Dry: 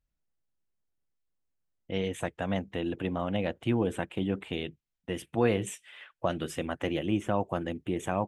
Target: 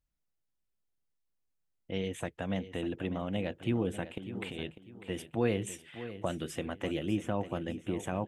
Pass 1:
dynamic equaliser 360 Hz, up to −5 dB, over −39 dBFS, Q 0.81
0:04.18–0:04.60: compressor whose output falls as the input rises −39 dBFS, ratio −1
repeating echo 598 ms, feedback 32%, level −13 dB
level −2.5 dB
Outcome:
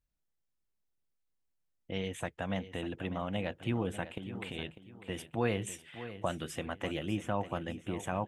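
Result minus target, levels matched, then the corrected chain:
1,000 Hz band +4.0 dB
dynamic equaliser 1,000 Hz, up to −5 dB, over −39 dBFS, Q 0.81
0:04.18–0:04.60: compressor whose output falls as the input rises −39 dBFS, ratio −1
repeating echo 598 ms, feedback 32%, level −13 dB
level −2.5 dB

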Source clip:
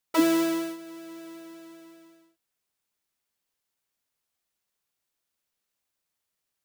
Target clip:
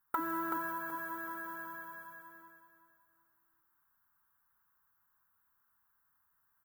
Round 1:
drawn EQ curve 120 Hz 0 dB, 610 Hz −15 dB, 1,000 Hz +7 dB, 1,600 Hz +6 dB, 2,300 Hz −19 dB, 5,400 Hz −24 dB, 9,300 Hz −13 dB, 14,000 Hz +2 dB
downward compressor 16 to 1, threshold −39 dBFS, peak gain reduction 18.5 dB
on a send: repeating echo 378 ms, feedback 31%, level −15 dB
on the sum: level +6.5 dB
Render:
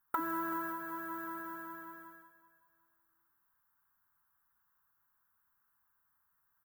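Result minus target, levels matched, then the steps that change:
echo-to-direct −10.5 dB
change: repeating echo 378 ms, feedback 31%, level −4.5 dB

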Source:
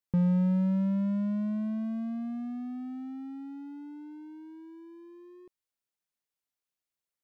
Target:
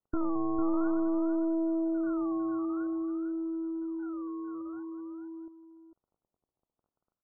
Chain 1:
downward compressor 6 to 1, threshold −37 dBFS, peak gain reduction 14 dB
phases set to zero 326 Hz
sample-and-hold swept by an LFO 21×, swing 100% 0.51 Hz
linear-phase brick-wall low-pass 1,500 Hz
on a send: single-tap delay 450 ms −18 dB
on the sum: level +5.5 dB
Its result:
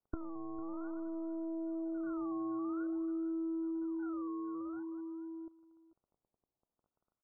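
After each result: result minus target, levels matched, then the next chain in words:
downward compressor: peak gain reduction +14 dB; echo-to-direct −10 dB
phases set to zero 326 Hz
sample-and-hold swept by an LFO 21×, swing 100% 0.51 Hz
linear-phase brick-wall low-pass 1,500 Hz
on a send: single-tap delay 450 ms −18 dB
on the sum: level +5.5 dB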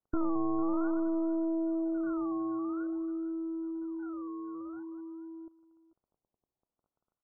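echo-to-direct −10 dB
phases set to zero 326 Hz
sample-and-hold swept by an LFO 21×, swing 100% 0.51 Hz
linear-phase brick-wall low-pass 1,500 Hz
on a send: single-tap delay 450 ms −8 dB
on the sum: level +5.5 dB

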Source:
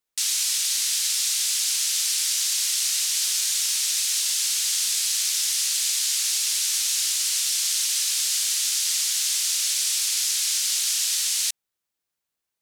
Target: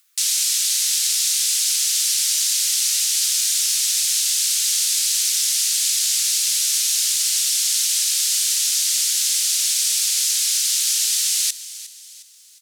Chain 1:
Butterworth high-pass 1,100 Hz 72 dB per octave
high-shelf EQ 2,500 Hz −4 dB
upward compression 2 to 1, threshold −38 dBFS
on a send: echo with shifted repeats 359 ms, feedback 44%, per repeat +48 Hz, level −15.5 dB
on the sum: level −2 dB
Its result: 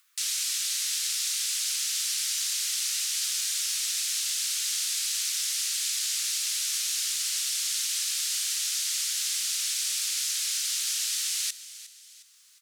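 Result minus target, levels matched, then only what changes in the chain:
2,000 Hz band +4.5 dB
change: high-shelf EQ 2,500 Hz +7 dB

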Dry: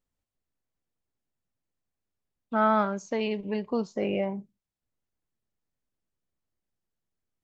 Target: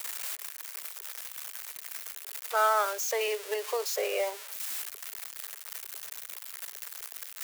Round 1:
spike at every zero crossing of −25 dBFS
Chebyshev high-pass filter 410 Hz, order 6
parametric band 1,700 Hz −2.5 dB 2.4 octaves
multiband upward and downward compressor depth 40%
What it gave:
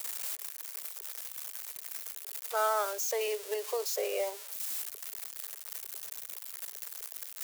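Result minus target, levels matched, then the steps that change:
2,000 Hz band −4.0 dB
change: parametric band 1,700 Hz +4.5 dB 2.4 octaves

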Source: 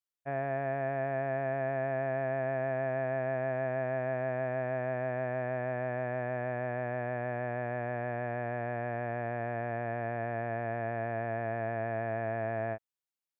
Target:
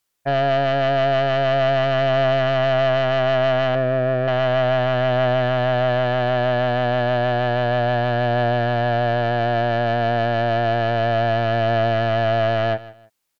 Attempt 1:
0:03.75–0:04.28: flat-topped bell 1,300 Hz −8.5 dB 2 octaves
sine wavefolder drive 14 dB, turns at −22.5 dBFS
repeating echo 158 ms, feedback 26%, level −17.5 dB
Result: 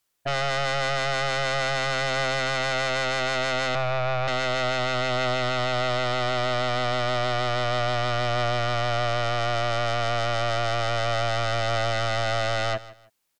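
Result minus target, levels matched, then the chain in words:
sine wavefolder: distortion +14 dB
0:03.75–0:04.28: flat-topped bell 1,300 Hz −8.5 dB 2 octaves
sine wavefolder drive 14 dB, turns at −15 dBFS
repeating echo 158 ms, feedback 26%, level −17.5 dB

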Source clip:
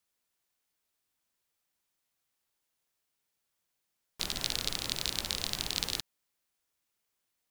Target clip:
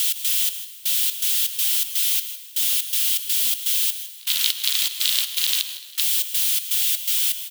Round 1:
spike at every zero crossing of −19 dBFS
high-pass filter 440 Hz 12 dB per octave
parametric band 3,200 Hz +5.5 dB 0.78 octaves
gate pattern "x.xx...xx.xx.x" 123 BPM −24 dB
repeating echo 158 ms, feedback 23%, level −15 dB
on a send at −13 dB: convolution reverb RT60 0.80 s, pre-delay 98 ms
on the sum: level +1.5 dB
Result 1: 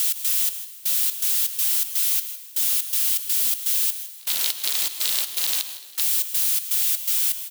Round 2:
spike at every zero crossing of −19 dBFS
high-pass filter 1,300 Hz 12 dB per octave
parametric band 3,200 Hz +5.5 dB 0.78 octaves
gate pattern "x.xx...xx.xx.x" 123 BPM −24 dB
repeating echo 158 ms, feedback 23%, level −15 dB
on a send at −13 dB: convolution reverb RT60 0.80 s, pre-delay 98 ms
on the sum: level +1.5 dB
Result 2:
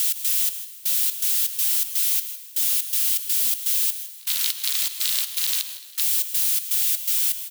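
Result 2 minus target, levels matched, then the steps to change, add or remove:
4,000 Hz band −5.0 dB
change: parametric band 3,200 Hz +14 dB 0.78 octaves

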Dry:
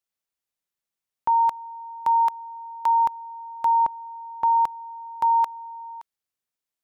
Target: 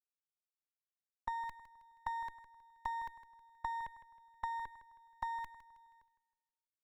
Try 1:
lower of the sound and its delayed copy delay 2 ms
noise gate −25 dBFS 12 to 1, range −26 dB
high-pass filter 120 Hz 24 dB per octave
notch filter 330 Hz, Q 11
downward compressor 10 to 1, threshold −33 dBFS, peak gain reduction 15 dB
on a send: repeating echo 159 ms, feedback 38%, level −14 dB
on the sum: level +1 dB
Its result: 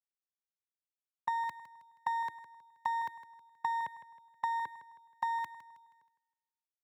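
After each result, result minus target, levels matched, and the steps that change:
125 Hz band −10.0 dB; downward compressor: peak gain reduction −6.5 dB
remove: high-pass filter 120 Hz 24 dB per octave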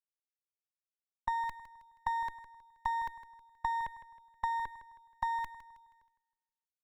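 downward compressor: peak gain reduction −6.5 dB
change: downward compressor 10 to 1, threshold −40 dBFS, peak gain reduction 21.5 dB

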